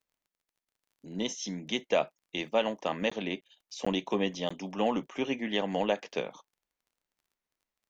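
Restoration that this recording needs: de-click; interpolate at 0.65/3.10/3.41/3.85/4.49 s, 15 ms

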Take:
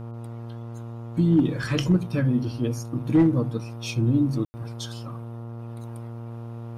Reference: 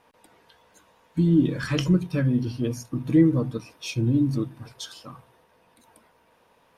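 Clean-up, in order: clip repair -12 dBFS; de-hum 116.3 Hz, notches 12; room tone fill 4.45–4.54 s; trim 0 dB, from 5.59 s -3 dB

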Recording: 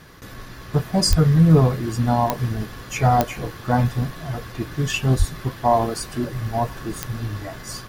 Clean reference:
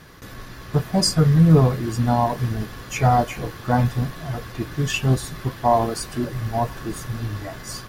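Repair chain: de-click; de-plosive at 1.09/5.18 s

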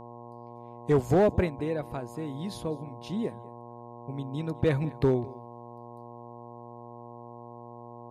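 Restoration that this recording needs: clip repair -16 dBFS; de-hum 119 Hz, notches 9; inverse comb 203 ms -22 dB

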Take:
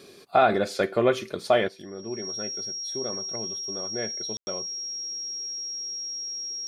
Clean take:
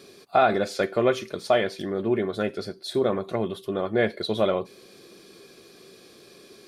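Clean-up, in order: band-stop 5.6 kHz, Q 30; room tone fill 4.37–4.47 s; gain correction +10.5 dB, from 1.68 s

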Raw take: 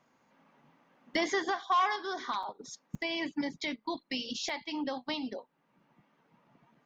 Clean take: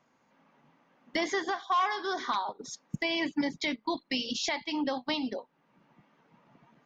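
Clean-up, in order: interpolate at 2.43/2.95/4.49 s, 4 ms; trim 0 dB, from 1.96 s +4 dB

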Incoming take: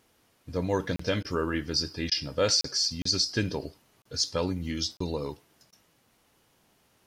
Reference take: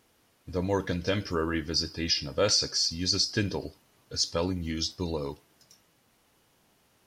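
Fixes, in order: interpolate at 0.96/2.61/3.02/4.02/4.97 s, 34 ms; interpolate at 1.23/2.10/5.71 s, 14 ms

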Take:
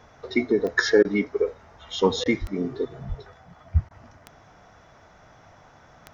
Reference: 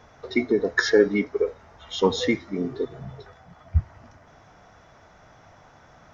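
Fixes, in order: de-click; 2.40–2.52 s: high-pass 140 Hz 24 dB/octave; 3.08–3.20 s: high-pass 140 Hz 24 dB/octave; interpolate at 1.03/2.24/3.89 s, 16 ms

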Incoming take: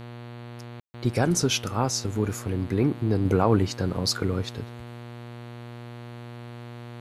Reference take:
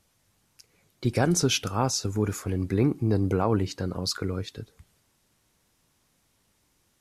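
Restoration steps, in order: de-hum 119.5 Hz, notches 38; room tone fill 0.80–0.94 s; trim 0 dB, from 3.25 s -3.5 dB

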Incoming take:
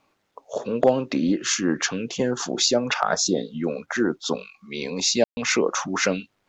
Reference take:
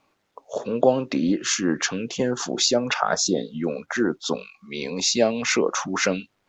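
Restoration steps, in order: clip repair -6.5 dBFS; room tone fill 5.24–5.37 s

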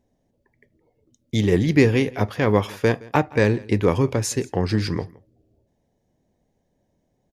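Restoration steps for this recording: inverse comb 167 ms -23 dB

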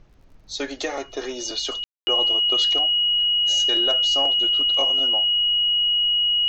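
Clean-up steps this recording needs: de-click; band-stop 2.9 kHz, Q 30; room tone fill 1.84–2.07 s; expander -39 dBFS, range -21 dB

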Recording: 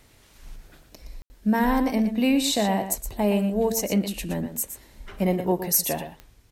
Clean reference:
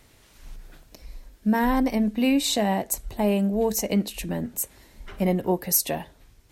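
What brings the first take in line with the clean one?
de-click; room tone fill 1.22–1.30 s; inverse comb 118 ms -10 dB

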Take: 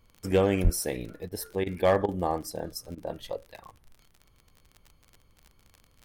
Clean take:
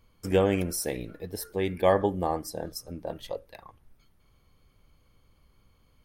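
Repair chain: clip repair -14.5 dBFS; de-click; de-plosive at 0.63 s; interpolate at 1.29/1.64/2.06/2.95 s, 23 ms

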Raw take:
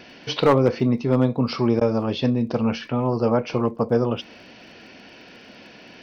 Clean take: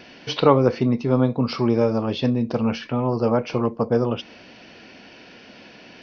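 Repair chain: clip repair -8.5 dBFS; de-click; interpolate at 1.80 s, 11 ms

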